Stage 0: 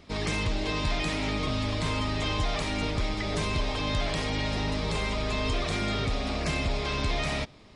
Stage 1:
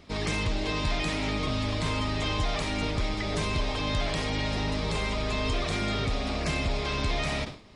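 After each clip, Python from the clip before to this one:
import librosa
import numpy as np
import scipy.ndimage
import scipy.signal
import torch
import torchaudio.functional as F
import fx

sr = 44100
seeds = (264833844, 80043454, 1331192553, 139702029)

y = fx.sustainer(x, sr, db_per_s=130.0)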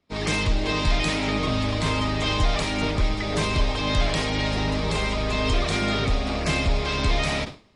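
y = fx.band_widen(x, sr, depth_pct=100)
y = y * 10.0 ** (5.5 / 20.0)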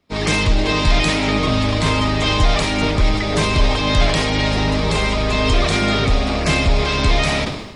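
y = fx.sustainer(x, sr, db_per_s=59.0)
y = y * 10.0 ** (6.5 / 20.0)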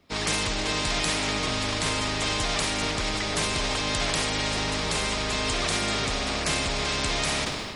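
y = fx.spectral_comp(x, sr, ratio=2.0)
y = y * 10.0 ** (-7.5 / 20.0)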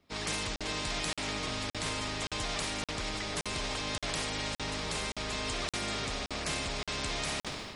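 y = fx.buffer_crackle(x, sr, first_s=0.56, period_s=0.57, block=2048, kind='zero')
y = y * 10.0 ** (-8.0 / 20.0)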